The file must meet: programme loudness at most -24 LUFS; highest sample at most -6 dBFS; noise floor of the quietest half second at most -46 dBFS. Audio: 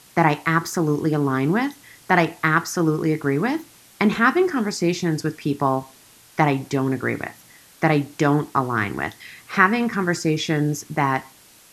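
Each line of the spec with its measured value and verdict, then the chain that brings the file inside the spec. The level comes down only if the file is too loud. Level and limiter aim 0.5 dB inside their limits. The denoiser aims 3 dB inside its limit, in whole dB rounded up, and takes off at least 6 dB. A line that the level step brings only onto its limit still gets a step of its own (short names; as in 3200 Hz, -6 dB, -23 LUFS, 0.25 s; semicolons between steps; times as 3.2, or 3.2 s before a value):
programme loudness -21.5 LUFS: fail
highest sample -2.0 dBFS: fail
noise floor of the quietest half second -50 dBFS: OK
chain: gain -3 dB; limiter -6.5 dBFS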